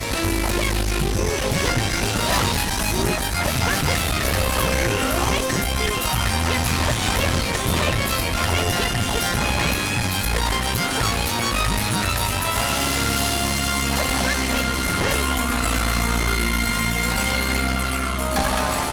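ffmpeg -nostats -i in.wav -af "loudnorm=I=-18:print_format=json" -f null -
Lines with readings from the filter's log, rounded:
"input_i" : "-20.8",
"input_tp" : "-9.8",
"input_lra" : "0.5",
"input_thresh" : "-30.8",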